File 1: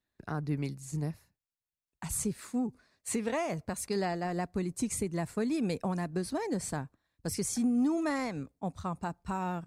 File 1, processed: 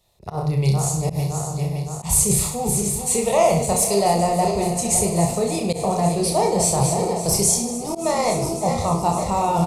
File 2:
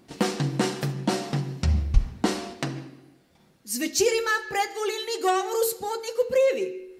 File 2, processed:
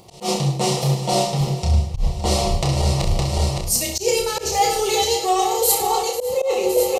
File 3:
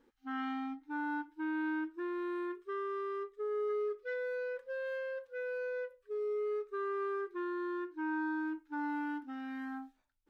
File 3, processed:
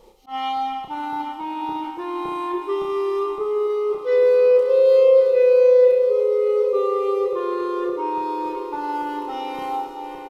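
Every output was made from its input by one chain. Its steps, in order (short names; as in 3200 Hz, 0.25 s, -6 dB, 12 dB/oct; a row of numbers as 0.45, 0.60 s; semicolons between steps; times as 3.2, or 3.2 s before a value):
regenerating reverse delay 0.282 s, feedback 78%, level -11.5 dB; downsampling 32000 Hz; reverse; compressor 12:1, threshold -37 dBFS; reverse; fixed phaser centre 660 Hz, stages 4; on a send: reverse bouncing-ball echo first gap 30 ms, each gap 1.15×, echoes 5; on the sum: auto swell 0.103 s; match loudness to -20 LUFS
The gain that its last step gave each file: +24.0, +22.5, +22.5 dB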